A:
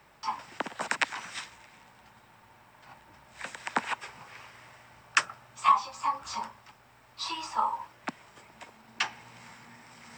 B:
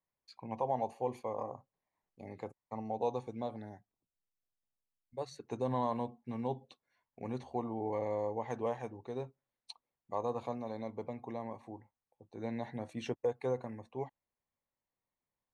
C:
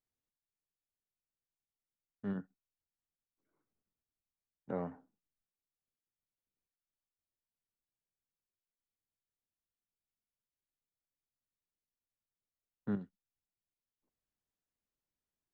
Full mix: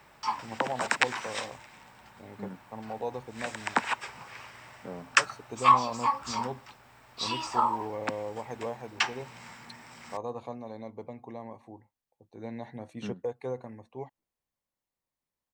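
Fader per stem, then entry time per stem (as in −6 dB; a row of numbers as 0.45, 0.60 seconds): +2.5, −0.5, −3.0 decibels; 0.00, 0.00, 0.15 seconds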